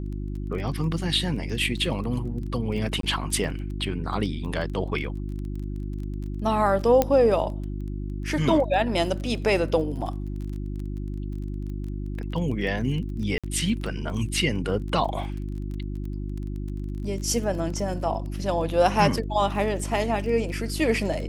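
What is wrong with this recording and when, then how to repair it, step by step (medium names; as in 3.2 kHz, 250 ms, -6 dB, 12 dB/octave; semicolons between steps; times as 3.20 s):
crackle 20 per s -33 dBFS
hum 50 Hz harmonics 7 -31 dBFS
3.01–3.03 s: dropout 23 ms
7.02 s: pop -7 dBFS
13.38–13.44 s: dropout 56 ms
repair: de-click; de-hum 50 Hz, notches 7; interpolate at 3.01 s, 23 ms; interpolate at 13.38 s, 56 ms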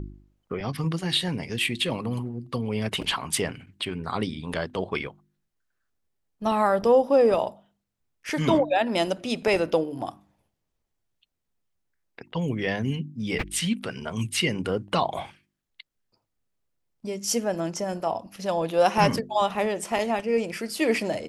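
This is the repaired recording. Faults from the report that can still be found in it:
nothing left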